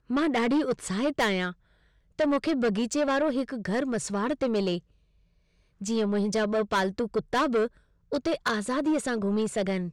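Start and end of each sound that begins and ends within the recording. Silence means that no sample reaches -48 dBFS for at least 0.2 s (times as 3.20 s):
2.19–4.80 s
5.81–7.77 s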